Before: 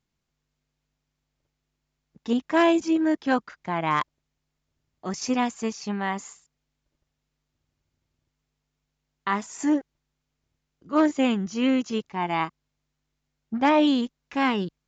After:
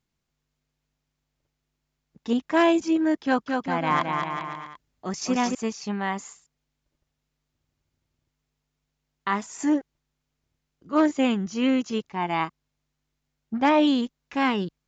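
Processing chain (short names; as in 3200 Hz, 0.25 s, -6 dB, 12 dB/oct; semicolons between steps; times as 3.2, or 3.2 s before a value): 3.24–5.55 bouncing-ball echo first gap 0.22 s, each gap 0.8×, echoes 5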